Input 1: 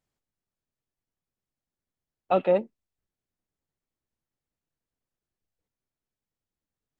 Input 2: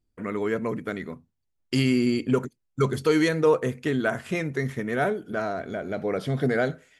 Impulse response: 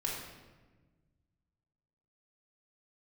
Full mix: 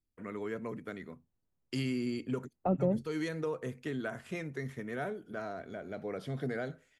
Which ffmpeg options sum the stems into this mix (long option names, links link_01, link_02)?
-filter_complex "[0:a]lowpass=1400,lowshelf=frequency=480:gain=8,adelay=350,volume=-0.5dB[link_01];[1:a]volume=-11dB[link_02];[link_01][link_02]amix=inputs=2:normalize=0,acrossover=split=220[link_03][link_04];[link_04]acompressor=threshold=-33dB:ratio=4[link_05];[link_03][link_05]amix=inputs=2:normalize=0"